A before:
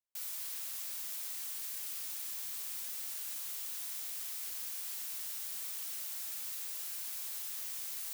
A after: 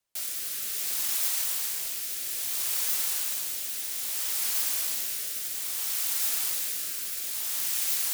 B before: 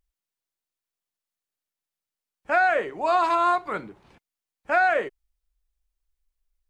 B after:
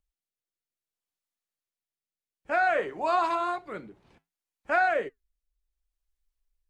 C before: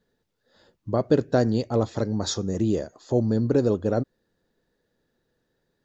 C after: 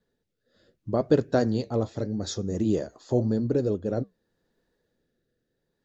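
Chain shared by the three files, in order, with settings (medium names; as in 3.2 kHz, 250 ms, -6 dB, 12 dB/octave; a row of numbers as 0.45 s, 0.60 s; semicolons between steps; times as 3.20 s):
rotary cabinet horn 0.6 Hz; flange 0.83 Hz, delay 1.4 ms, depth 8.1 ms, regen -76%; normalise loudness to -27 LUFS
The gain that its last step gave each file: +19.5 dB, +2.5 dB, +3.5 dB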